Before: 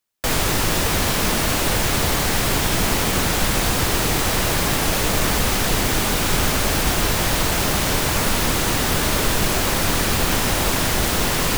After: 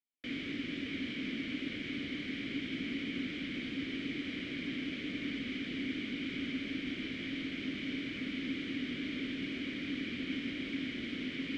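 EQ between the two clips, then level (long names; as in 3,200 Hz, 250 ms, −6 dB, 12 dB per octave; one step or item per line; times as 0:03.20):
formant filter i
low-pass filter 3,800 Hz 12 dB per octave
−4.0 dB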